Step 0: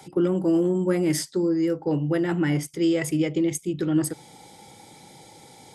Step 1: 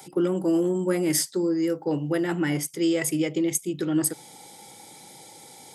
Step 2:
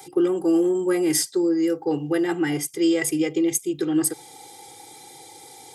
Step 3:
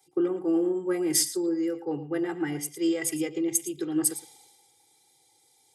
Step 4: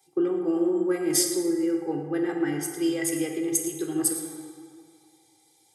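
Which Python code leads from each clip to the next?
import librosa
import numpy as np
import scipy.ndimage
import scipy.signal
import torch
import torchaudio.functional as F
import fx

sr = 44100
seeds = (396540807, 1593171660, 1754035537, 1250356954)

y1 = fx.highpass(x, sr, hz=210.0, slope=6)
y1 = fx.high_shelf(y1, sr, hz=8300.0, db=11.5)
y2 = y1 + 0.73 * np.pad(y1, (int(2.5 * sr / 1000.0), 0))[:len(y1)]
y3 = y2 + 10.0 ** (-12.5 / 20.0) * np.pad(y2, (int(113 * sr / 1000.0), 0))[:len(y2)]
y3 = fx.band_widen(y3, sr, depth_pct=70)
y3 = y3 * 10.0 ** (-6.5 / 20.0)
y4 = fx.rev_plate(y3, sr, seeds[0], rt60_s=2.1, hf_ratio=0.45, predelay_ms=0, drr_db=3.0)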